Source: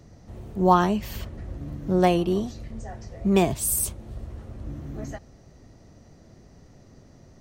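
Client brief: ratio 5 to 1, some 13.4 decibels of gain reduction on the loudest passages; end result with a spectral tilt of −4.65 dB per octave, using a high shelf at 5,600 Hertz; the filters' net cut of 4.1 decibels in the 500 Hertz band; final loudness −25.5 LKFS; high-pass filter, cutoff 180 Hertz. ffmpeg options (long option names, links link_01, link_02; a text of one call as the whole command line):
ffmpeg -i in.wav -af "highpass=180,equalizer=frequency=500:width_type=o:gain=-6,highshelf=frequency=5600:gain=-8.5,acompressor=threshold=-29dB:ratio=5,volume=10.5dB" out.wav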